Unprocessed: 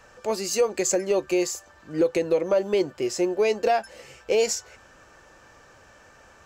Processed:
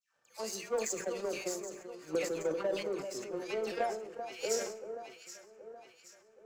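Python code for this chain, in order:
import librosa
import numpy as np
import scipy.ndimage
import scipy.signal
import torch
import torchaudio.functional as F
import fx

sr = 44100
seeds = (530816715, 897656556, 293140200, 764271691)

y = scipy.signal.sosfilt(scipy.signal.butter(4, 110.0, 'highpass', fs=sr, output='sos'), x)
y = fx.low_shelf(y, sr, hz=440.0, db=-3.5)
y = fx.hum_notches(y, sr, base_hz=60, count=7)
y = fx.dispersion(y, sr, late='lows', ms=145.0, hz=1500.0)
y = fx.power_curve(y, sr, exponent=1.4)
y = fx.echo_alternate(y, sr, ms=387, hz=1400.0, feedback_pct=66, wet_db=-8.5)
y = fx.rev_schroeder(y, sr, rt60_s=0.9, comb_ms=28, drr_db=17.0)
y = fx.sustainer(y, sr, db_per_s=71.0)
y = y * librosa.db_to_amplitude(-8.0)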